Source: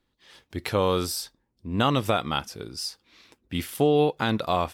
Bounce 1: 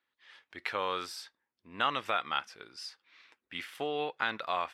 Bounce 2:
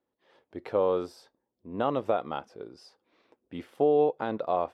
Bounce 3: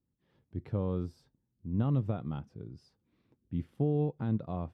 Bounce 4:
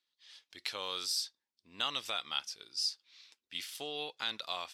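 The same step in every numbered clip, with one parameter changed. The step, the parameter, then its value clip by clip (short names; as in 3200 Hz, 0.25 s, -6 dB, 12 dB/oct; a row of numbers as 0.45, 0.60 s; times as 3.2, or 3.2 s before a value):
band-pass, frequency: 1800, 550, 130, 4600 Hz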